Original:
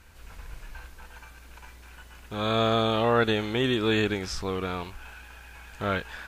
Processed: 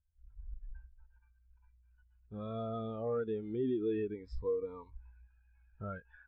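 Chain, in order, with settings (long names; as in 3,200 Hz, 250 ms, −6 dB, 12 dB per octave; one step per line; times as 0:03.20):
high-shelf EQ 10,000 Hz −7 dB
soft clipping −21.5 dBFS, distortion −13 dB
0:04.14–0:05.27: EQ curve with evenly spaced ripples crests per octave 1, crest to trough 8 dB
downward compressor 3 to 1, threshold −33 dBFS, peak gain reduction 7 dB
every bin expanded away from the loudest bin 2.5 to 1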